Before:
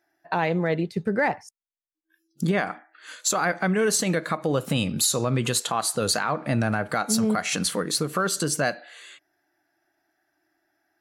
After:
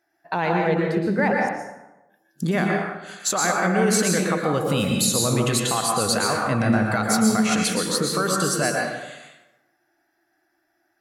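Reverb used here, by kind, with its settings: plate-style reverb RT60 1 s, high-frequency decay 0.6×, pre-delay 105 ms, DRR -0.5 dB

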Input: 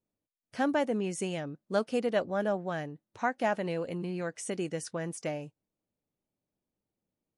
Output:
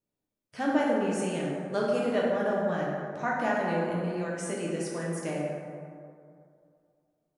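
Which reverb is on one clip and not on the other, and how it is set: plate-style reverb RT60 2.4 s, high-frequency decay 0.4×, DRR -4.5 dB; trim -3 dB

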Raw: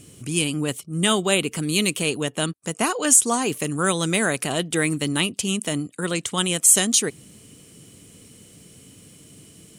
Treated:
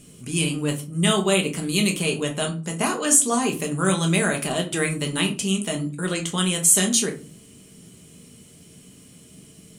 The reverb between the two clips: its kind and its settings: simulated room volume 200 m³, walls furnished, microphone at 1.3 m; trim -3 dB

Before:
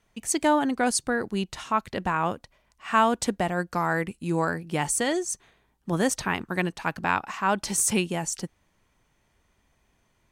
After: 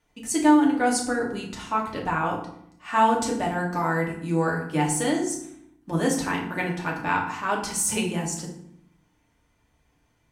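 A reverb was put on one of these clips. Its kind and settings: FDN reverb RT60 0.68 s, low-frequency decay 1.6×, high-frequency decay 0.7×, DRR -2.5 dB; trim -4.5 dB

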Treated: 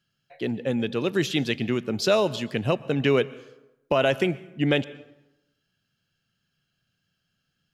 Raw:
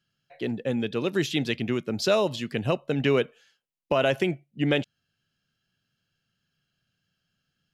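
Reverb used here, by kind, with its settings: plate-style reverb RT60 0.93 s, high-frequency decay 0.65×, pre-delay 105 ms, DRR 19 dB; trim +1.5 dB

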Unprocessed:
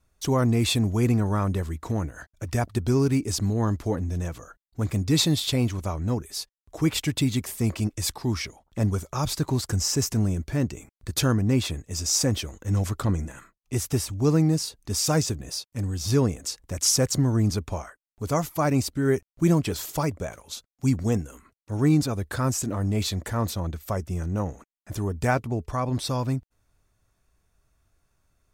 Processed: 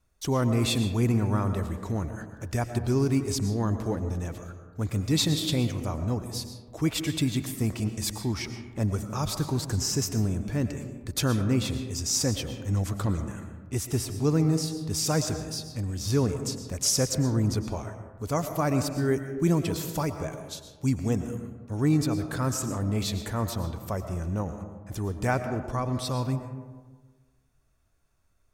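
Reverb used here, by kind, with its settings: algorithmic reverb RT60 1.4 s, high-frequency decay 0.35×, pre-delay 75 ms, DRR 8 dB; trim -3 dB

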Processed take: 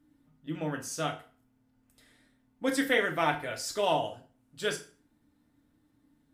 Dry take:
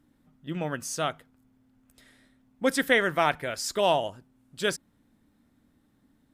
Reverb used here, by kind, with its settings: FDN reverb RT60 0.4 s, low-frequency decay 1×, high-frequency decay 0.9×, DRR 1.5 dB; trim -6 dB

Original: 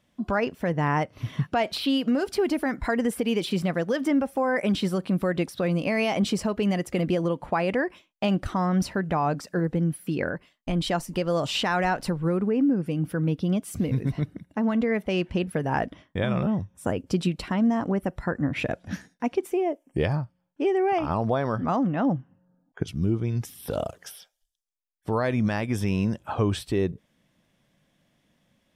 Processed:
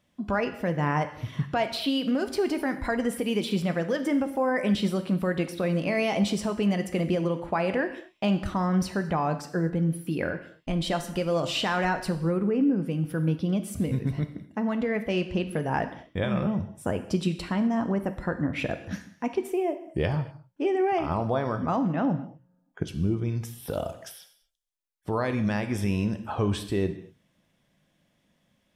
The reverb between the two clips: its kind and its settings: gated-style reverb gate 270 ms falling, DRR 8 dB; trim -2 dB

